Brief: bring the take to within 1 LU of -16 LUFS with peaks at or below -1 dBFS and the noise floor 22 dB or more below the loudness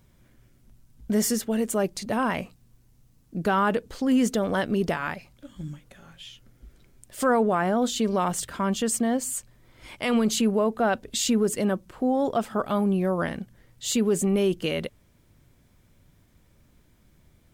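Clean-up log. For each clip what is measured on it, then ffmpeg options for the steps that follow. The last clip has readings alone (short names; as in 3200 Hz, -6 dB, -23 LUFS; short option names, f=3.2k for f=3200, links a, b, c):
loudness -25.5 LUFS; peak -14.0 dBFS; loudness target -16.0 LUFS
-> -af "volume=9.5dB"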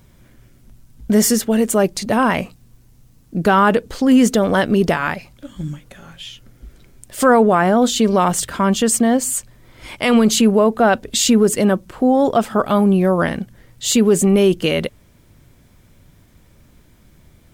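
loudness -16.0 LUFS; peak -4.5 dBFS; noise floor -51 dBFS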